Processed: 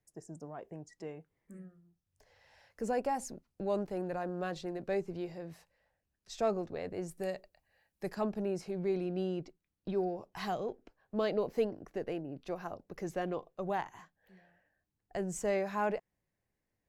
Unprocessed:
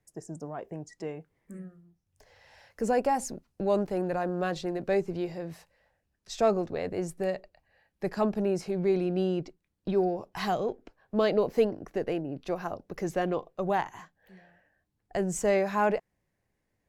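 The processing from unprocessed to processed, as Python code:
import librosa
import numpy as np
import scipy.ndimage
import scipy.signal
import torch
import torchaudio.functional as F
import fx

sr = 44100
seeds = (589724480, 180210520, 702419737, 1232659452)

y = fx.high_shelf(x, sr, hz=5500.0, db=11.5, at=(7.11, 8.15))
y = y * librosa.db_to_amplitude(-7.0)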